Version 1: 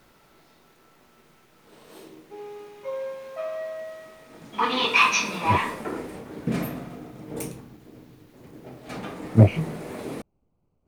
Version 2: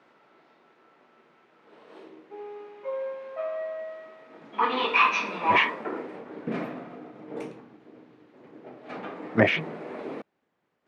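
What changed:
speech: remove running mean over 25 samples; master: add BPF 280–2400 Hz

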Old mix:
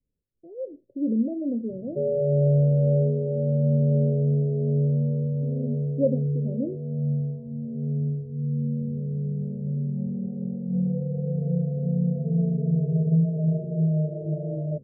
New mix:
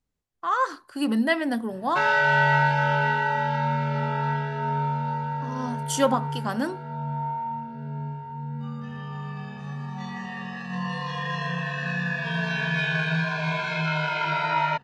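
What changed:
background -7.0 dB; master: remove steep low-pass 590 Hz 96 dB/oct

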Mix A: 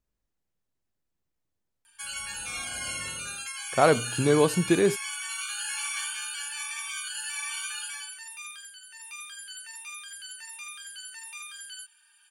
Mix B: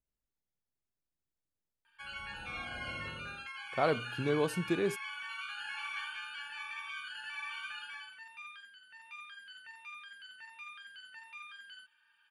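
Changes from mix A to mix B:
speech -9.5 dB; background: add air absorption 400 m

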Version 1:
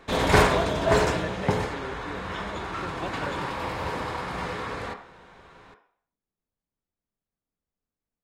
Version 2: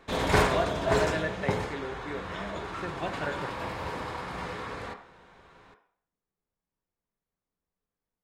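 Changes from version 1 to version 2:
speech: send +11.5 dB; background -4.5 dB

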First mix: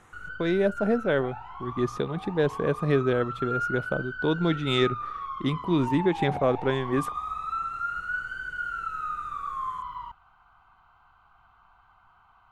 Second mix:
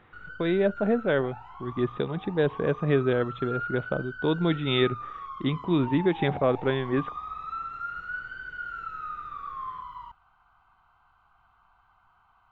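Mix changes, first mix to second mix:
speech: add brick-wall FIR low-pass 3900 Hz; background -4.0 dB

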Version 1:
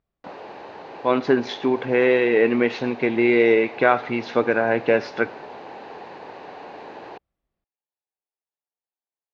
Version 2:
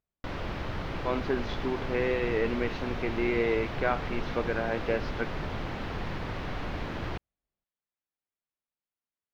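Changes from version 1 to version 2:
speech -11.0 dB; background: remove speaker cabinet 400–6200 Hz, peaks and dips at 430 Hz +5 dB, 820 Hz +7 dB, 1300 Hz -9 dB, 2100 Hz -6 dB, 3300 Hz -9 dB, 5400 Hz -8 dB

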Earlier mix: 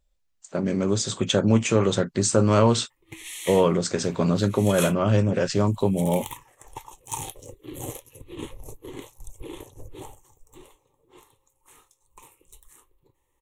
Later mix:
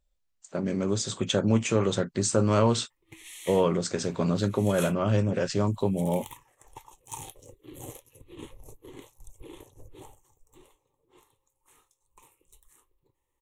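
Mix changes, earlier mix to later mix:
speech -4.0 dB; background -7.5 dB

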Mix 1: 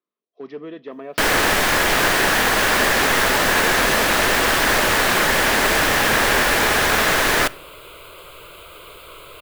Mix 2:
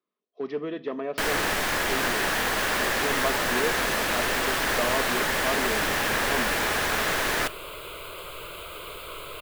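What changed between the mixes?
speech: send on; first sound -8.5 dB; second sound: send +10.0 dB

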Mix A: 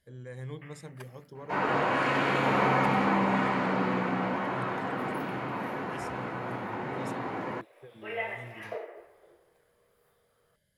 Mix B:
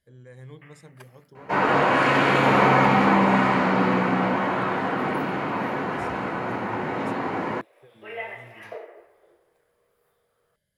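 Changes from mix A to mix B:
speech -3.5 dB; second sound +7.5 dB

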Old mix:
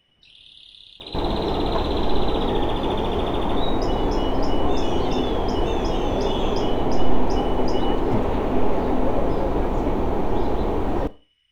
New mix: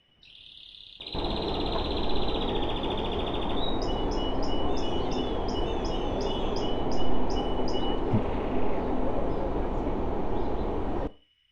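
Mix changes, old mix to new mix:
second sound -7.0 dB; master: add air absorption 61 m

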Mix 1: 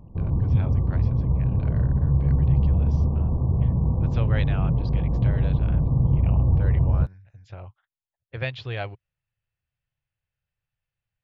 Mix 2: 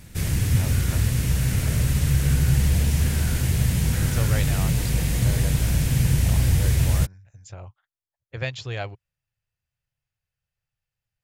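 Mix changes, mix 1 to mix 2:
speech: remove LPF 3900 Hz 24 dB/oct; background: remove brick-wall FIR low-pass 1200 Hz

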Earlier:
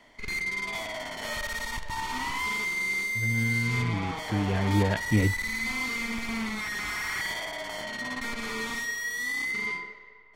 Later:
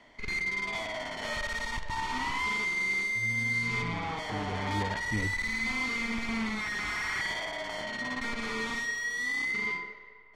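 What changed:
speech -10.0 dB; background: add air absorption 58 m

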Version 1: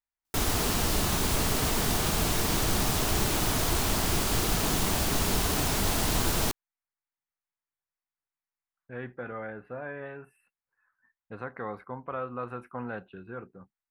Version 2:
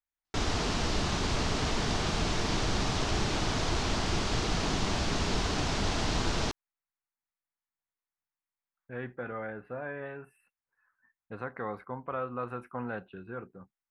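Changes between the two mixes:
background: add LPF 6100 Hz 24 dB/oct; reverb: off

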